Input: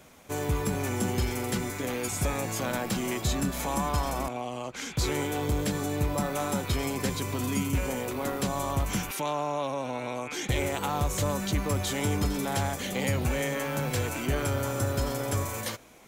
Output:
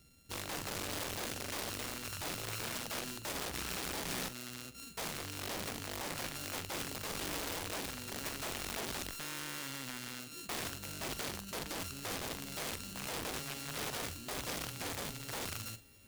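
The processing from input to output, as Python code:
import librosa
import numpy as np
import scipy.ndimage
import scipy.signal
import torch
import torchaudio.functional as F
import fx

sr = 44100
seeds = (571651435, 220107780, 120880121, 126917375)

p1 = np.r_[np.sort(x[:len(x) // 32 * 32].reshape(-1, 32), axis=1).ravel(), x[len(x) // 32 * 32:]]
p2 = fx.tone_stack(p1, sr, knobs='10-0-1')
p3 = p2 + fx.echo_thinned(p2, sr, ms=623, feedback_pct=81, hz=310.0, wet_db=-24.0, dry=0)
p4 = fx.rider(p3, sr, range_db=4, speed_s=0.5)
p5 = (np.mod(10.0 ** (42.0 / 20.0) * p4 + 1.0, 2.0) - 1.0) / 10.0 ** (42.0 / 20.0)
p6 = fx.tilt_eq(p5, sr, slope=1.5)
p7 = fx.doubler(p6, sr, ms=44.0, db=-12.0)
p8 = fx.doppler_dist(p7, sr, depth_ms=0.16)
y = p8 * 10.0 ** (7.0 / 20.0)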